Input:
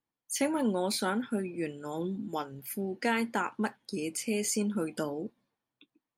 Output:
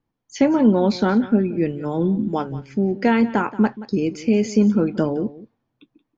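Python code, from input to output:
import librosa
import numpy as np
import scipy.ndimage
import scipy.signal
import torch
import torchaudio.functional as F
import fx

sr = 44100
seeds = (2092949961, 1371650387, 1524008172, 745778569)

p1 = scipy.signal.sosfilt(scipy.signal.butter(12, 6700.0, 'lowpass', fs=sr, output='sos'), x)
p2 = fx.tilt_eq(p1, sr, slope=-3.0)
p3 = p2 + fx.echo_single(p2, sr, ms=178, db=-17.0, dry=0)
y = F.gain(torch.from_numpy(p3), 8.5).numpy()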